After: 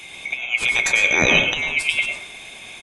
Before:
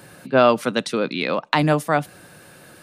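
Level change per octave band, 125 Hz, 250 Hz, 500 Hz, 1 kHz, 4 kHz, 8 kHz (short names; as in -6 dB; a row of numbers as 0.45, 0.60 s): -8.0, -8.5, -9.0, -9.5, +7.5, +11.5 dB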